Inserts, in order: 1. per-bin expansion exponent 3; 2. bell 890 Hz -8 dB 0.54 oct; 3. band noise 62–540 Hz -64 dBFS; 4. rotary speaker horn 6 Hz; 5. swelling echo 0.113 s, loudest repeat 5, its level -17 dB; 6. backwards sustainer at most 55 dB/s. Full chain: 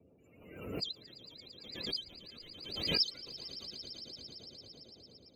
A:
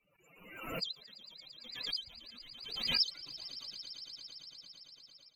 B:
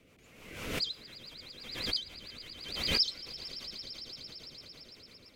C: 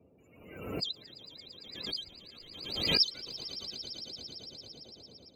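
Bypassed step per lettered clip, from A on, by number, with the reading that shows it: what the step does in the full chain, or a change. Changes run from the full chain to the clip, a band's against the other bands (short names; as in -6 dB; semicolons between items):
3, 250 Hz band -7.0 dB; 1, 8 kHz band +5.5 dB; 4, 8 kHz band +2.0 dB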